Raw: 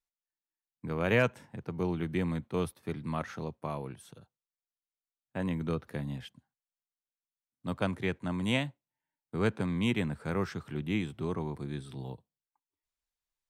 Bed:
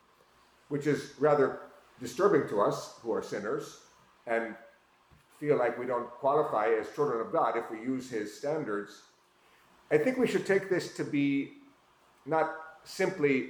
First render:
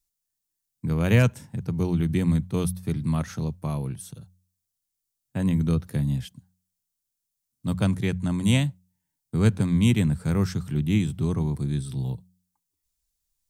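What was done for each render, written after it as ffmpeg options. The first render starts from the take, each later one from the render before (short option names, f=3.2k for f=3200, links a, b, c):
-af "bass=f=250:g=15,treble=f=4k:g=15,bandreject=f=90.93:t=h:w=4,bandreject=f=181.86:t=h:w=4"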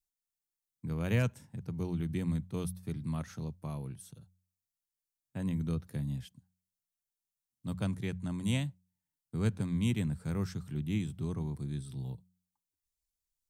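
-af "volume=-10.5dB"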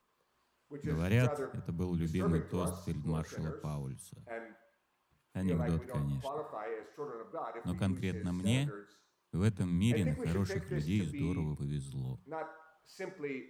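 -filter_complex "[1:a]volume=-13dB[a];[0:a][a]amix=inputs=2:normalize=0"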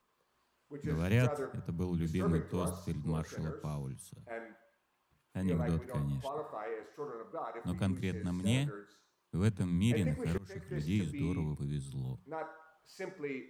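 -filter_complex "[0:a]asplit=2[a][b];[a]atrim=end=10.38,asetpts=PTS-STARTPTS,afade=t=out:st=10.376:d=0.004:c=hsin:silence=0.0668344[c];[b]atrim=start=10.38,asetpts=PTS-STARTPTS,afade=t=in:d=0.51:silence=0.0668344[d];[c][d]concat=n=2:v=0:a=1"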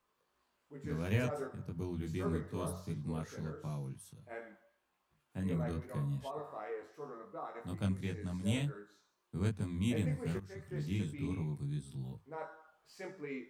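-af "flanger=delay=19:depth=2.1:speed=2.7"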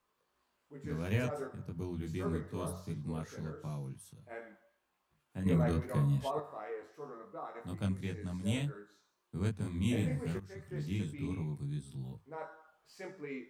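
-filter_complex "[0:a]asettb=1/sr,asplit=3[a][b][c];[a]atrim=end=5.464[d];[b]atrim=start=5.46:end=6.4,asetpts=PTS-STARTPTS,afade=t=in:d=0.004:c=qsin,afade=t=out:st=0.936:d=0.004:c=qsin,acontrast=67[e];[c]atrim=start=6.396[f];[d][e]acrossfade=d=0.004:c1=hsin:c2=qsin[g];[g][f]acrossfade=d=0.004:c1=qsin:c2=hsin,asettb=1/sr,asplit=3[h][i][j];[h]atrim=end=9.614[k];[i]atrim=start=9.61:end=10.26,asetpts=PTS-STARTPTS,afade=t=in:d=0.004:c=qsin,afade=t=out:st=0.646:d=0.004:c=qsin,asplit=2[l][m];[m]adelay=36,volume=-3.5dB[n];[l][n]amix=inputs=2:normalize=0,atrim=end_sample=28665[o];[j]atrim=start=10.256[p];[k][o]acrossfade=d=0.004:c1=hsin:c2=qsin[q];[q][p]acrossfade=d=0.004:c1=qsin:c2=hsin"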